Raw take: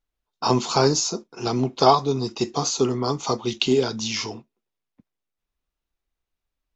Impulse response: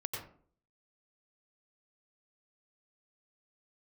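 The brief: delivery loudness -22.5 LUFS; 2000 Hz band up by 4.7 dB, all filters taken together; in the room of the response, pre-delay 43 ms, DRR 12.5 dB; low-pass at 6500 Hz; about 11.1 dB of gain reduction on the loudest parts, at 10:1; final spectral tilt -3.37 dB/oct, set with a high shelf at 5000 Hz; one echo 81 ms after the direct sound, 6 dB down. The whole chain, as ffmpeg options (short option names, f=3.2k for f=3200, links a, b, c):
-filter_complex "[0:a]lowpass=6.5k,equalizer=f=2k:t=o:g=5,highshelf=f=5k:g=8,acompressor=threshold=-20dB:ratio=10,aecho=1:1:81:0.501,asplit=2[a][b];[1:a]atrim=start_sample=2205,adelay=43[c];[b][c]afir=irnorm=-1:irlink=0,volume=-14dB[d];[a][d]amix=inputs=2:normalize=0,volume=2dB"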